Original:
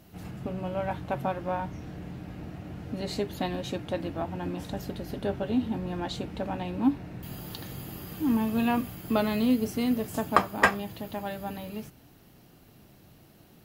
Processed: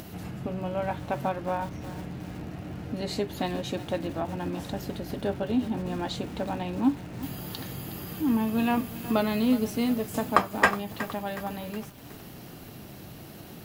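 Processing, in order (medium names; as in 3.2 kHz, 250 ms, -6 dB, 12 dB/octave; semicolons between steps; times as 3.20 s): in parallel at -3 dB: compression, threshold -42 dBFS, peak gain reduction 24.5 dB; on the sum: high-pass 58 Hz 6 dB/octave; upward compressor, threshold -35 dBFS; bit-crushed delay 367 ms, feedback 55%, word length 6-bit, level -14 dB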